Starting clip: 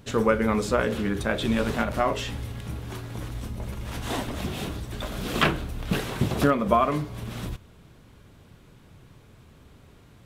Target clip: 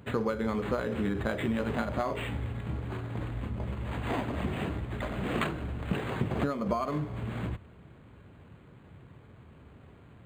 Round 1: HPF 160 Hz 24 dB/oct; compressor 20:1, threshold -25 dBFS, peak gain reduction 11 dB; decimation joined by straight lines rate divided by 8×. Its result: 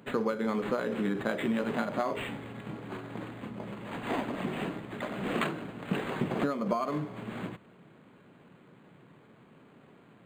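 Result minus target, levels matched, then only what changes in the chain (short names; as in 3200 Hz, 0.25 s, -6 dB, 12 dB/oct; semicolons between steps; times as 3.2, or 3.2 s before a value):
125 Hz band -6.5 dB
change: HPF 54 Hz 24 dB/oct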